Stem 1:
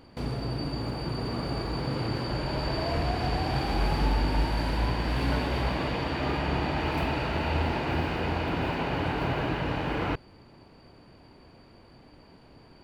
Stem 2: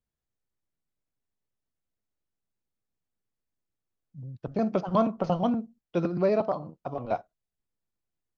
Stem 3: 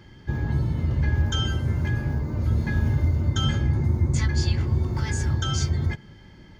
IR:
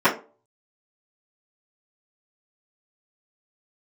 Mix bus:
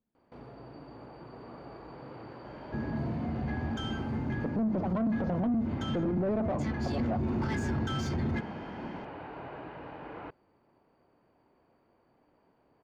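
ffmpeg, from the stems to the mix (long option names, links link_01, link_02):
-filter_complex "[0:a]highshelf=frequency=2700:gain=-9,adelay=150,volume=-19.5dB[link_01];[1:a]tiltshelf=frequency=970:gain=4,volume=-6.5dB,asplit=2[link_02][link_03];[2:a]adelay=2450,volume=-4dB,afade=type=in:start_time=6.79:duration=0.36:silence=0.334965[link_04];[link_03]apad=whole_len=572704[link_05];[link_01][link_05]sidechaincompress=threshold=-42dB:ratio=8:attack=6.3:release=126[link_06];[link_02][link_04]amix=inputs=2:normalize=0,equalizer=frequency=230:width=1.5:gain=13,alimiter=limit=-23dB:level=0:latency=1:release=41,volume=0dB[link_07];[link_06][link_07]amix=inputs=2:normalize=0,asplit=2[link_08][link_09];[link_09]highpass=frequency=720:poles=1,volume=19dB,asoftclip=type=tanh:threshold=-21.5dB[link_10];[link_08][link_10]amix=inputs=2:normalize=0,lowpass=frequency=1000:poles=1,volume=-6dB"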